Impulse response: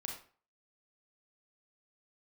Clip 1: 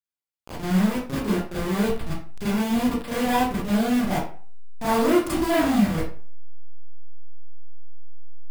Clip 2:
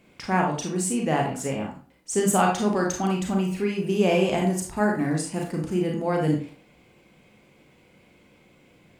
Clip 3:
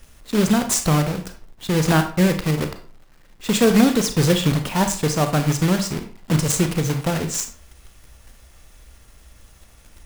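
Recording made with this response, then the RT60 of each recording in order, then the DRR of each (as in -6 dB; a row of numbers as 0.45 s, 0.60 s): 2; 0.45 s, 0.40 s, 0.40 s; -10.0 dB, 0.0 dB, 7.0 dB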